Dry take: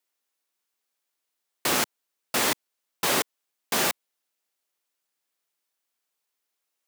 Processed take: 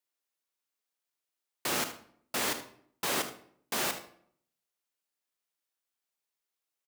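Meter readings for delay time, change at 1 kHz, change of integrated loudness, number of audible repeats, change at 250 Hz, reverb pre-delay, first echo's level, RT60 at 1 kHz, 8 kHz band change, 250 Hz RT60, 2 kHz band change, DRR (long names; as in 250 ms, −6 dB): 76 ms, −7.0 dB, −7.0 dB, 1, −6.5 dB, 28 ms, −14.0 dB, 0.60 s, −7.0 dB, 0.75 s, −7.0 dB, 7.5 dB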